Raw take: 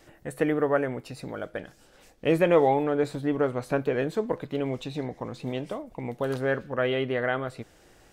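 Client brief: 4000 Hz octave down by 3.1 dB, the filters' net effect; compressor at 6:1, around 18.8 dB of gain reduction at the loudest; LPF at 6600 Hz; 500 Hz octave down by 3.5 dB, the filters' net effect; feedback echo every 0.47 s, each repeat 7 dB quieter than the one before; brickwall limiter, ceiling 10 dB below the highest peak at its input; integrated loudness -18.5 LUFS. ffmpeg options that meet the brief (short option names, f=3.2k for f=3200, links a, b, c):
-af "lowpass=6.6k,equalizer=f=500:t=o:g=-4,equalizer=f=4k:t=o:g=-4,acompressor=threshold=-40dB:ratio=6,alimiter=level_in=14dB:limit=-24dB:level=0:latency=1,volume=-14dB,aecho=1:1:470|940|1410|1880|2350:0.447|0.201|0.0905|0.0407|0.0183,volume=29.5dB"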